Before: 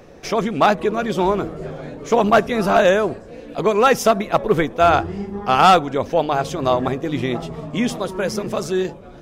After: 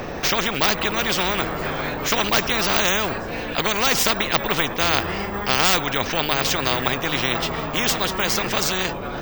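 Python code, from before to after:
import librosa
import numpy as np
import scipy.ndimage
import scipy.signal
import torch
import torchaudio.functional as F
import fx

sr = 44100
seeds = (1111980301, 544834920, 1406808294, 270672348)

y = fx.air_absorb(x, sr, metres=86.0)
y = np.repeat(scipy.signal.resample_poly(y, 1, 2), 2)[:len(y)]
y = fx.spectral_comp(y, sr, ratio=4.0)
y = F.gain(torch.from_numpy(y), 4.5).numpy()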